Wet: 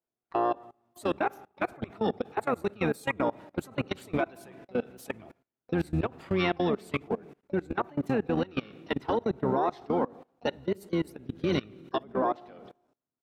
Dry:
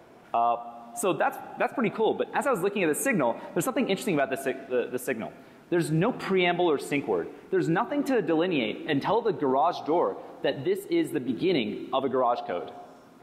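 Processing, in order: gate -38 dBFS, range -21 dB; harmony voices -12 st -4 dB, +7 st -13 dB; level held to a coarse grid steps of 23 dB; trim -2.5 dB

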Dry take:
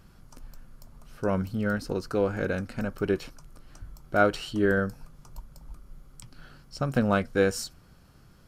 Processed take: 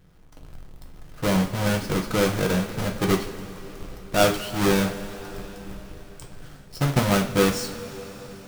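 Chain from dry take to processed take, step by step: square wave that keeps the level; level rider gain up to 7 dB; two-slope reverb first 0.33 s, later 4.8 s, from -18 dB, DRR 2 dB; trim -8.5 dB

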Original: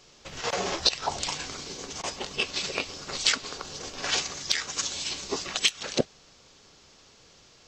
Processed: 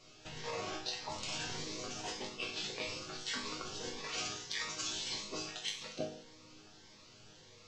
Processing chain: treble shelf 6.9 kHz -11.5 dB; reverse; compression 6:1, threshold -35 dBFS, peak gain reduction 15.5 dB; reverse; chord resonator G#2 minor, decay 0.59 s; Shepard-style phaser rising 1.7 Hz; trim +17 dB

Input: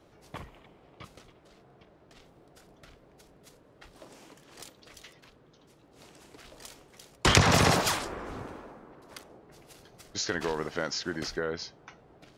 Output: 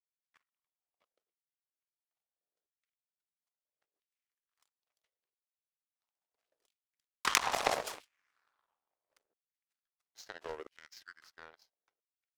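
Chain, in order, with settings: 6.65–7.66 s: partial rectifier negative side -3 dB; LFO high-pass saw down 0.75 Hz 390–2800 Hz; power-law waveshaper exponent 2

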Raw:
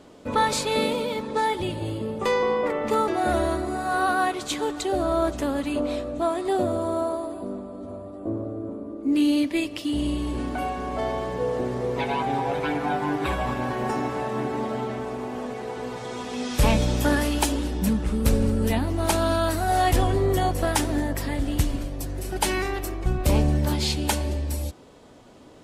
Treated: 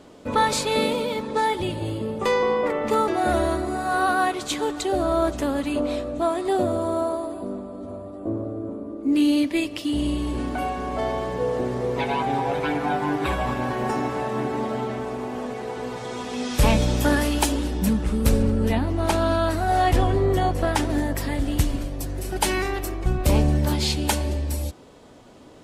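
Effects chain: 18.42–20.90 s: low-pass 3.7 kHz 6 dB/octave; trim +1.5 dB

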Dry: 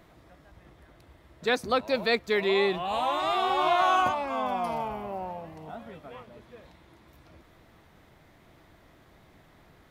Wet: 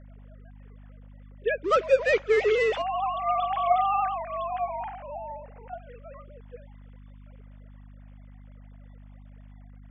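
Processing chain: formants replaced by sine waves; 1.64–2.82 s: power-law waveshaper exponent 0.7; hum 50 Hz, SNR 18 dB; MP3 32 kbps 24 kHz

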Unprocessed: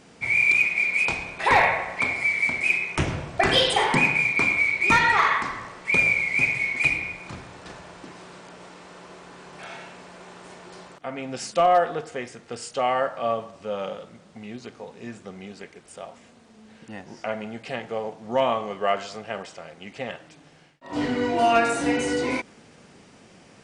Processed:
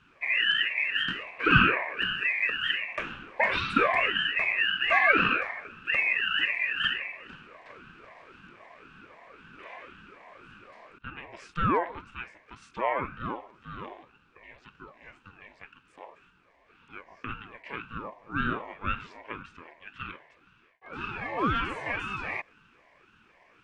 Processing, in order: two resonant band-passes 1.3 kHz, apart 1.2 oct; ring modulator with a swept carrier 420 Hz, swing 65%, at 1.9 Hz; trim +5.5 dB

